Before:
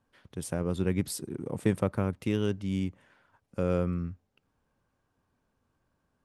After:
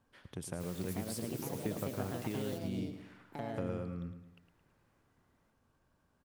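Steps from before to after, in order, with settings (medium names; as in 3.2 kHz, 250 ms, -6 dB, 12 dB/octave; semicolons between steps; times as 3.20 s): compression 2.5:1, threshold -43 dBFS, peak gain reduction 15.5 dB; ever faster or slower copies 548 ms, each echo +4 st, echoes 2; 0.59–2.57 s: added noise white -55 dBFS; feedback delay 109 ms, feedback 45%, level -10 dB; trim +1 dB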